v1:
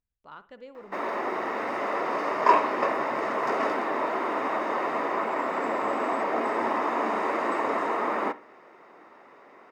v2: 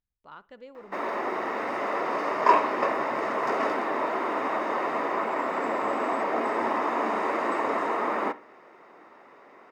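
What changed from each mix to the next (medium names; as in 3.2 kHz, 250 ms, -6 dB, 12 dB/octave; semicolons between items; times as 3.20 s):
speech: send -6.5 dB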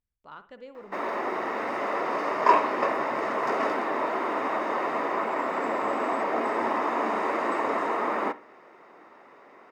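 speech: send +9.5 dB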